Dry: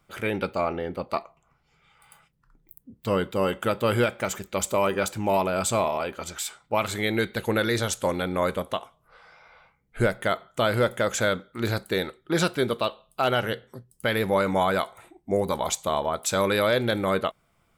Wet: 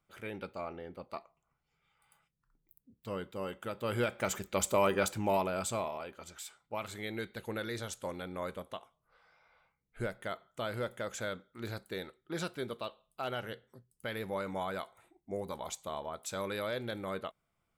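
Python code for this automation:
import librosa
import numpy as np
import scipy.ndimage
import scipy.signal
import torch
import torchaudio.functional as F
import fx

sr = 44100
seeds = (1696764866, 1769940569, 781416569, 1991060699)

y = fx.gain(x, sr, db=fx.line((3.71, -14.5), (4.3, -4.5), (5.09, -4.5), (6.06, -14.0)))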